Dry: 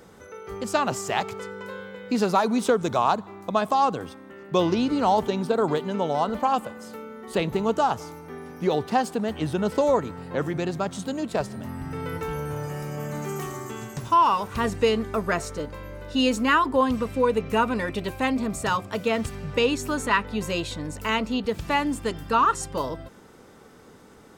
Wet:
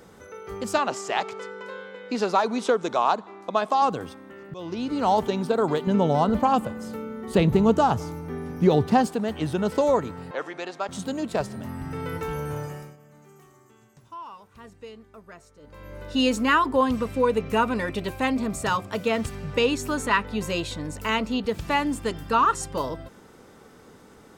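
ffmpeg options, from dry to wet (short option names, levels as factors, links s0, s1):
-filter_complex "[0:a]asettb=1/sr,asplit=3[s0][s1][s2];[s0]atrim=end=0.784[s3];[s1]atrim=start=0.78:end=3.82,asetpts=PTS-STARTPTS,afade=t=in:d=0.004:c=qsin,afade=t=out:st=3.036:d=0.004:c=qsin,highpass=280,lowpass=6900[s4];[s2]atrim=start=3.816[s5];[s3][s4]acrossfade=d=0.004:c1=hsin:c2=qsin[s6];[s6][s5]acrossfade=d=0.004:c1=qsin:c2=hsin,asettb=1/sr,asplit=3[s7][s8][s9];[s7]atrim=end=5.874[s10];[s8]atrim=start=5.87:end=9.07,asetpts=PTS-STARTPTS,afade=t=in:d=0.004:c=qsin,afade=t=out:st=3.196:d=0.004:c=qsin,equalizer=f=82:w=0.31:g=12[s11];[s9]atrim=start=9.066[s12];[s10][s11]acrossfade=d=0.004:c1=hsin:c2=qsin[s13];[s13][s12]acrossfade=d=0.004:c1=qsin:c2=hsin,asettb=1/sr,asplit=3[s14][s15][s16];[s14]atrim=end=10.314[s17];[s15]atrim=start=10.31:end=10.89,asetpts=PTS-STARTPTS,afade=t=in:d=0.004:c=qsin,afade=t=out:st=0.576:d=0.004:c=qsin,highpass=560,lowpass=6100[s18];[s16]atrim=start=10.886[s19];[s17][s18]acrossfade=d=0.004:c1=hsin:c2=qsin[s20];[s20][s19]acrossfade=d=0.004:c1=qsin:c2=hsin,asplit=4[s21][s22][s23][s24];[s21]atrim=end=4.54,asetpts=PTS-STARTPTS,afade=t=out:st=4.536:d=0.004:c=hsin:silence=0.0668344[s25];[s22]atrim=start=4.54:end=12.97,asetpts=PTS-STARTPTS,afade=t=in:d=0.59:silence=0.0668344,afade=t=out:st=8.03:d=0.4:silence=0.0891251[s26];[s23]atrim=start=12.97:end=15.61,asetpts=PTS-STARTPTS,volume=0.0891[s27];[s24]atrim=start=15.61,asetpts=PTS-STARTPTS,afade=t=in:d=0.4:silence=0.0891251[s28];[s25][s26][s27][s28]concat=n=4:v=0:a=1"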